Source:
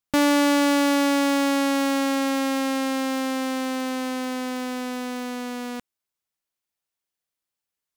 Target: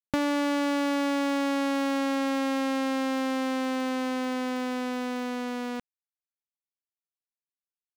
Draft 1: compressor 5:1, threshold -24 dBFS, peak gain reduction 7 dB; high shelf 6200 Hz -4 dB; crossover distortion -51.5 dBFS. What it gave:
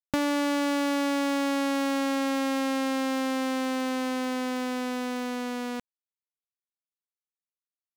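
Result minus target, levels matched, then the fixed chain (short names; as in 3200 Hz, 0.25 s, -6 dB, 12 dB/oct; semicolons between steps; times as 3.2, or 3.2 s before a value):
8000 Hz band +3.5 dB
compressor 5:1, threshold -24 dBFS, peak gain reduction 7 dB; high shelf 6200 Hz -10 dB; crossover distortion -51.5 dBFS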